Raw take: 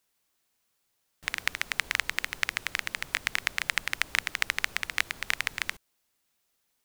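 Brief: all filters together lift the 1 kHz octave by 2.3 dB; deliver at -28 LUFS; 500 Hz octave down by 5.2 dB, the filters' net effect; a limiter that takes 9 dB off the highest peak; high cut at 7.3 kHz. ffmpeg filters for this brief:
-af "lowpass=7300,equalizer=f=500:t=o:g=-9,equalizer=f=1000:t=o:g=5,volume=2.37,alimiter=limit=0.562:level=0:latency=1"

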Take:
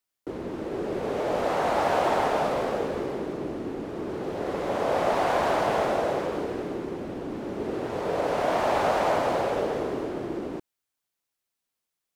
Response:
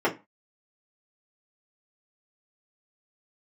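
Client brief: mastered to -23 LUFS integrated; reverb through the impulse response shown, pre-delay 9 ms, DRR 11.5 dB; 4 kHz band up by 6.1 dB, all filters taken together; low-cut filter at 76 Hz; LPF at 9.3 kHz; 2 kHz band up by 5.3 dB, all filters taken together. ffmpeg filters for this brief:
-filter_complex "[0:a]highpass=76,lowpass=9300,equalizer=f=2000:t=o:g=5.5,equalizer=f=4000:t=o:g=6,asplit=2[s0][s1];[1:a]atrim=start_sample=2205,adelay=9[s2];[s1][s2]afir=irnorm=-1:irlink=0,volume=0.0501[s3];[s0][s3]amix=inputs=2:normalize=0,volume=1.41"

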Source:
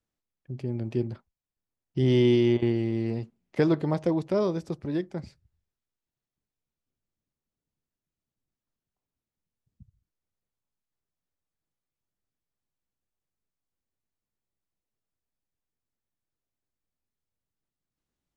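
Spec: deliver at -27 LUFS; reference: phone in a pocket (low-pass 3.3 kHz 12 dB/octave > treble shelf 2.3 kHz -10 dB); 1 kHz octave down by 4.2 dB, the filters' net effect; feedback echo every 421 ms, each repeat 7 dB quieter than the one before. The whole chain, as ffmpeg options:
-af "lowpass=3300,equalizer=f=1000:t=o:g=-3.5,highshelf=f=2300:g=-10,aecho=1:1:421|842|1263|1684|2105:0.447|0.201|0.0905|0.0407|0.0183"

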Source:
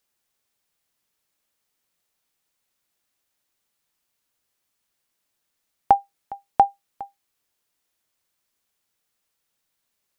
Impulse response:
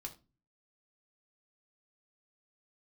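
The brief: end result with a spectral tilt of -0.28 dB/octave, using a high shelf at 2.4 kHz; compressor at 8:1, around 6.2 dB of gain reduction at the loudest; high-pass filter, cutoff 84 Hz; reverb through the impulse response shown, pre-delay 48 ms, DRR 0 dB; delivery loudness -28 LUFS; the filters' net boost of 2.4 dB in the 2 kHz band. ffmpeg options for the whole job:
-filter_complex "[0:a]highpass=84,equalizer=f=2000:t=o:g=7,highshelf=f=2400:g=-8.5,acompressor=threshold=0.126:ratio=8,asplit=2[s0][s1];[1:a]atrim=start_sample=2205,adelay=48[s2];[s1][s2]afir=irnorm=-1:irlink=0,volume=1.5[s3];[s0][s3]amix=inputs=2:normalize=0,volume=0.891"

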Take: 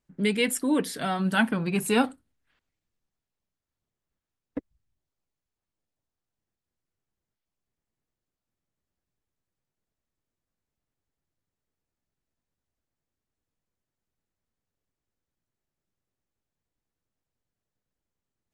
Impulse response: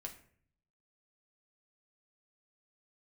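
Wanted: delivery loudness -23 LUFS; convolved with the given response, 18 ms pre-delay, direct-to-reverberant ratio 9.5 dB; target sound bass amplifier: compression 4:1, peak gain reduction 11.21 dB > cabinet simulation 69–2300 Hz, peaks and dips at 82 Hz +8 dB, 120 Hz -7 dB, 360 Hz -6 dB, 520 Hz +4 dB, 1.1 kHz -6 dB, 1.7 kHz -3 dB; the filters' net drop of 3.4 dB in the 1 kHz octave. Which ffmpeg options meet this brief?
-filter_complex "[0:a]equalizer=f=1000:t=o:g=-3,asplit=2[s0][s1];[1:a]atrim=start_sample=2205,adelay=18[s2];[s1][s2]afir=irnorm=-1:irlink=0,volume=0.501[s3];[s0][s3]amix=inputs=2:normalize=0,acompressor=threshold=0.0316:ratio=4,highpass=f=69:w=0.5412,highpass=f=69:w=1.3066,equalizer=f=82:t=q:w=4:g=8,equalizer=f=120:t=q:w=4:g=-7,equalizer=f=360:t=q:w=4:g=-6,equalizer=f=520:t=q:w=4:g=4,equalizer=f=1100:t=q:w=4:g=-6,equalizer=f=1700:t=q:w=4:g=-3,lowpass=f=2300:w=0.5412,lowpass=f=2300:w=1.3066,volume=4.22"

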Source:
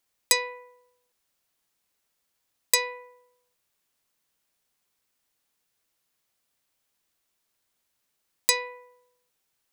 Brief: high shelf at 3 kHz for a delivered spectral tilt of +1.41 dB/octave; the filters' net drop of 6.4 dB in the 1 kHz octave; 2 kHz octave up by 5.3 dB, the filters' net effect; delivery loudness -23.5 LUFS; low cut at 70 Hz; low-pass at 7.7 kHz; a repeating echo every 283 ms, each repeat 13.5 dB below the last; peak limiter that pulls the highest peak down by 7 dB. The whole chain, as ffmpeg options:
-af "highpass=70,lowpass=7700,equalizer=f=1000:t=o:g=-8,equalizer=f=2000:t=o:g=5,highshelf=f=3000:g=6.5,alimiter=limit=0.398:level=0:latency=1,aecho=1:1:283|566:0.211|0.0444,volume=1.5"

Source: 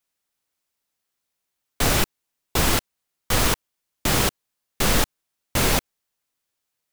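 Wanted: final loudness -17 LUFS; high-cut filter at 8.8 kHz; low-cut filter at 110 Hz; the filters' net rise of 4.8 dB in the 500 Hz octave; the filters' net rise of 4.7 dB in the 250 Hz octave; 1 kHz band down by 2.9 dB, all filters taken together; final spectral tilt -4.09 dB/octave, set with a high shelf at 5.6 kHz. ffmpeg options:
-af "highpass=110,lowpass=8800,equalizer=f=250:t=o:g=5,equalizer=f=500:t=o:g=6,equalizer=f=1000:t=o:g=-6,highshelf=f=5600:g=-5,volume=2.24"

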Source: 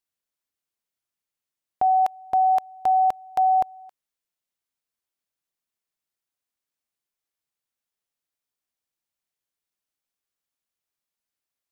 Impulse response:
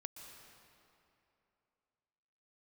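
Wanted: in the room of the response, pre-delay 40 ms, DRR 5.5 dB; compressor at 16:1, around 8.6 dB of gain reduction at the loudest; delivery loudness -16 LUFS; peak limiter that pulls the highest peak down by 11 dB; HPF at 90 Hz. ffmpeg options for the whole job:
-filter_complex "[0:a]highpass=90,acompressor=threshold=0.0562:ratio=16,alimiter=level_in=1.26:limit=0.0631:level=0:latency=1,volume=0.794,asplit=2[s0][s1];[1:a]atrim=start_sample=2205,adelay=40[s2];[s1][s2]afir=irnorm=-1:irlink=0,volume=0.841[s3];[s0][s3]amix=inputs=2:normalize=0,volume=4.73"

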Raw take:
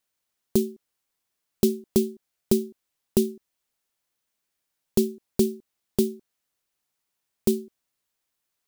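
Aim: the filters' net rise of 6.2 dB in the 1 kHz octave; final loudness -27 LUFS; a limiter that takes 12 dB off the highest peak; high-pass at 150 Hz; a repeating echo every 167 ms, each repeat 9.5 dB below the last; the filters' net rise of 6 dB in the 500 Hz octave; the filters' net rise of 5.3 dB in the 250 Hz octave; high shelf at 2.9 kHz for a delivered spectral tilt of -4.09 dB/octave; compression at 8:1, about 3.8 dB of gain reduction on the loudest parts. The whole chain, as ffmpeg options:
-af "highpass=150,equalizer=f=250:t=o:g=6,equalizer=f=500:t=o:g=5,equalizer=f=1000:t=o:g=5,highshelf=f=2900:g=6.5,acompressor=threshold=0.2:ratio=8,alimiter=limit=0.188:level=0:latency=1,aecho=1:1:167|334|501|668:0.335|0.111|0.0365|0.012,volume=1.41"

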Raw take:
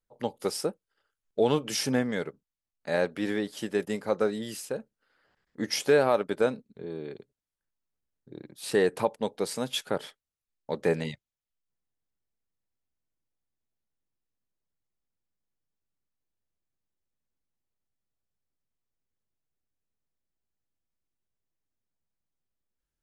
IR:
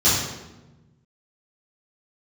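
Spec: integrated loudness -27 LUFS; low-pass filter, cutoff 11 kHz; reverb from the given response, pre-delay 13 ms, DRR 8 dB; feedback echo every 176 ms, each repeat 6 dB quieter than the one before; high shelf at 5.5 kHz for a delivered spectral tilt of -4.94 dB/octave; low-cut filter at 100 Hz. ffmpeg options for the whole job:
-filter_complex "[0:a]highpass=100,lowpass=11000,highshelf=f=5500:g=-4.5,aecho=1:1:176|352|528|704|880|1056:0.501|0.251|0.125|0.0626|0.0313|0.0157,asplit=2[s0][s1];[1:a]atrim=start_sample=2205,adelay=13[s2];[s1][s2]afir=irnorm=-1:irlink=0,volume=0.0473[s3];[s0][s3]amix=inputs=2:normalize=0,volume=1.12"

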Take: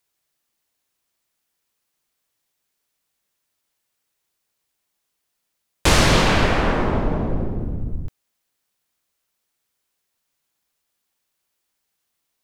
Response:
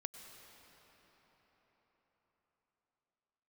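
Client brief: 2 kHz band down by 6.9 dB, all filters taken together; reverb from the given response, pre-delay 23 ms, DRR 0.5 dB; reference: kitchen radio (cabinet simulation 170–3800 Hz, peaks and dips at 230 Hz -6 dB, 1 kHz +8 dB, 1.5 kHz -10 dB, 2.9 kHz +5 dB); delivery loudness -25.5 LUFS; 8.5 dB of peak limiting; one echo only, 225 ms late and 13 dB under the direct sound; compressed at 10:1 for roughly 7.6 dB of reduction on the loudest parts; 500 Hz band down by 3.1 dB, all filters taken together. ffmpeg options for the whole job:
-filter_complex "[0:a]equalizer=f=500:t=o:g=-3.5,equalizer=f=2000:t=o:g=-7,acompressor=threshold=0.112:ratio=10,alimiter=limit=0.133:level=0:latency=1,aecho=1:1:225:0.224,asplit=2[s0][s1];[1:a]atrim=start_sample=2205,adelay=23[s2];[s1][s2]afir=irnorm=-1:irlink=0,volume=1.33[s3];[s0][s3]amix=inputs=2:normalize=0,highpass=170,equalizer=f=230:t=q:w=4:g=-6,equalizer=f=1000:t=q:w=4:g=8,equalizer=f=1500:t=q:w=4:g=-10,equalizer=f=2900:t=q:w=4:g=5,lowpass=f=3800:w=0.5412,lowpass=f=3800:w=1.3066,volume=1.41"

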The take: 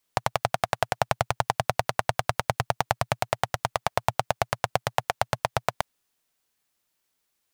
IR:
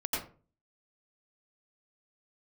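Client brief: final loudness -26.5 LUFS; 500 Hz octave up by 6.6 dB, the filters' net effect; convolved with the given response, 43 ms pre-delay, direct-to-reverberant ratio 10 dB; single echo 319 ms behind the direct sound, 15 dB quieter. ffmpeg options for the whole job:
-filter_complex "[0:a]equalizer=f=500:t=o:g=9,aecho=1:1:319:0.178,asplit=2[s0][s1];[1:a]atrim=start_sample=2205,adelay=43[s2];[s1][s2]afir=irnorm=-1:irlink=0,volume=0.158[s3];[s0][s3]amix=inputs=2:normalize=0,volume=0.794"

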